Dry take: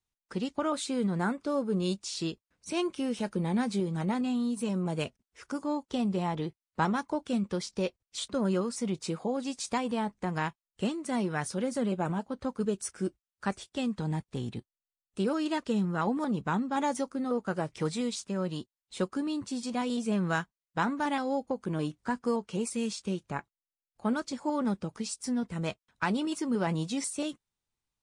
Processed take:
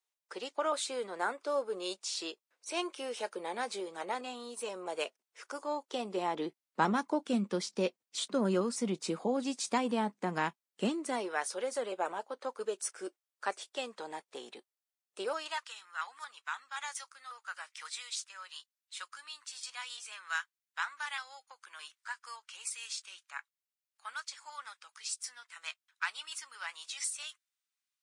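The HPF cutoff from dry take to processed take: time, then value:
HPF 24 dB/oct
5.66 s 440 Hz
6.83 s 200 Hz
10.86 s 200 Hz
11.32 s 440 Hz
15.21 s 440 Hz
15.73 s 1300 Hz

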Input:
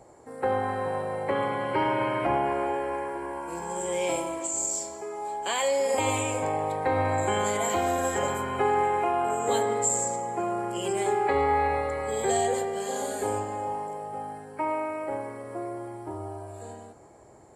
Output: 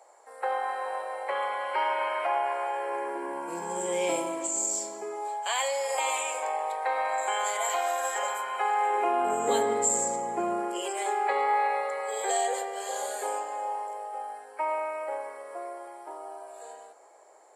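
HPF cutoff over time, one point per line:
HPF 24 dB/oct
2.73 s 600 Hz
3.39 s 180 Hz
5 s 180 Hz
5.44 s 620 Hz
8.79 s 620 Hz
9.34 s 160 Hz
10.52 s 160 Hz
10.92 s 510 Hz

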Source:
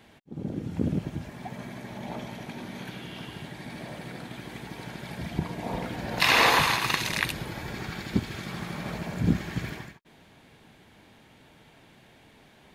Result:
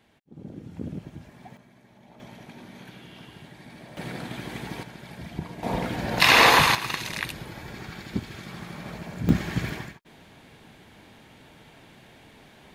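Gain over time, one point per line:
-7.5 dB
from 1.57 s -16 dB
from 2.2 s -6 dB
from 3.97 s +4.5 dB
from 4.83 s -4 dB
from 5.63 s +4.5 dB
from 6.75 s -3.5 dB
from 9.29 s +4 dB

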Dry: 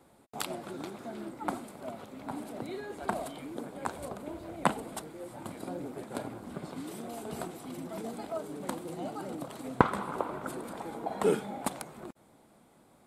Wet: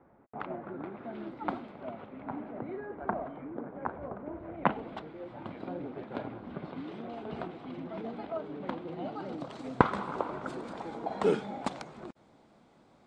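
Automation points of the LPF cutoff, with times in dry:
LPF 24 dB/oct
0.79 s 1900 Hz
1.33 s 4000 Hz
2.86 s 1800 Hz
4.3 s 1800 Hz
4.89 s 3400 Hz
8.96 s 3400 Hz
9.57 s 6200 Hz

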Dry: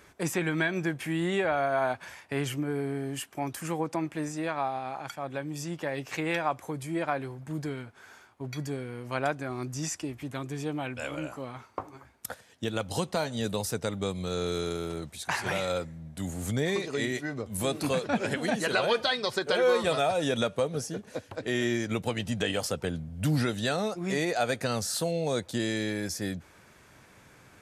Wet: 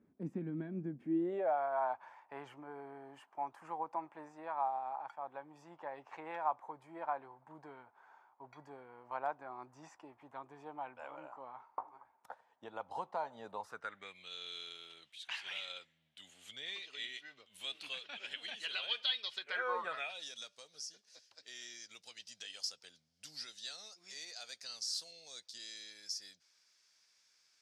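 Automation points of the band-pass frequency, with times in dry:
band-pass, Q 4.3
0.99 s 230 Hz
1.6 s 900 Hz
13.56 s 900 Hz
14.32 s 3100 Hz
19.39 s 3100 Hz
19.76 s 900 Hz
20.28 s 5100 Hz

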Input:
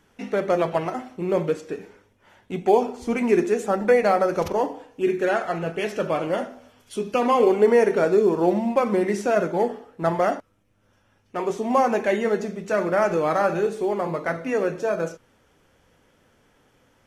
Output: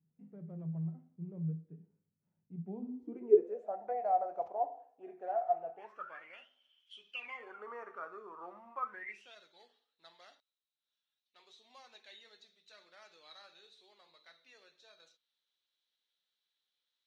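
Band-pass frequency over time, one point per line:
band-pass, Q 19
2.59 s 160 Hz
3.75 s 710 Hz
5.72 s 710 Hz
6.48 s 3100 Hz
7.11 s 3100 Hz
7.66 s 1200 Hz
8.82 s 1200 Hz
9.37 s 3900 Hz

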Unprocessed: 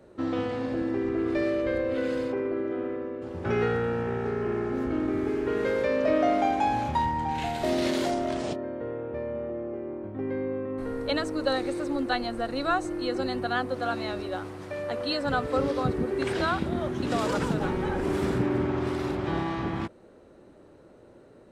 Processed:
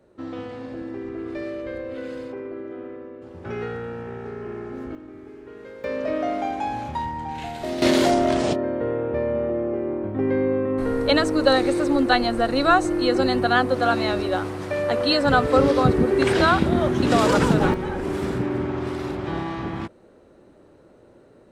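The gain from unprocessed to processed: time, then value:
-4.5 dB
from 4.95 s -14 dB
from 5.84 s -2 dB
from 7.82 s +9 dB
from 17.74 s +1 dB

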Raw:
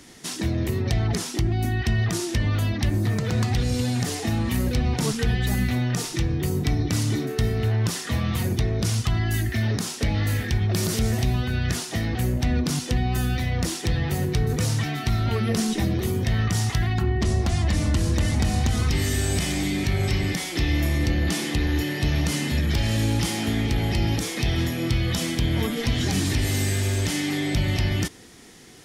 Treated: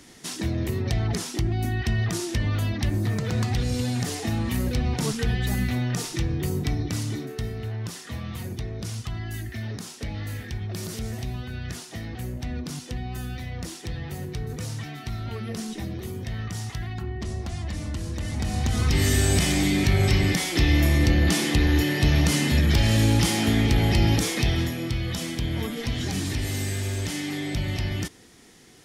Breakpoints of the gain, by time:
6.53 s -2 dB
7.64 s -9 dB
18.16 s -9 dB
19.07 s +3 dB
24.3 s +3 dB
24.88 s -4.5 dB

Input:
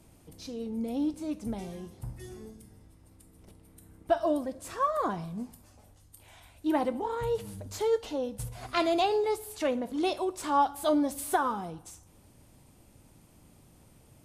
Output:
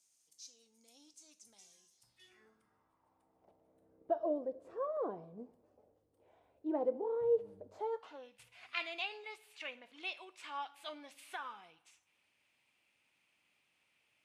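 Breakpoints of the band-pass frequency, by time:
band-pass, Q 3.2
1.97 s 6400 Hz
2.5 s 1400 Hz
4.11 s 470 Hz
7.65 s 470 Hz
8.37 s 2500 Hz

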